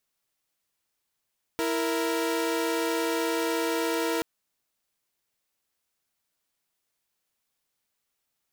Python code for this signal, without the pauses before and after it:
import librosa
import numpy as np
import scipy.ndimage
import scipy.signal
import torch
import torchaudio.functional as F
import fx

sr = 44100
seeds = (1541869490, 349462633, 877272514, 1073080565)

y = fx.chord(sr, length_s=2.63, notes=(64, 70), wave='saw', level_db=-25.5)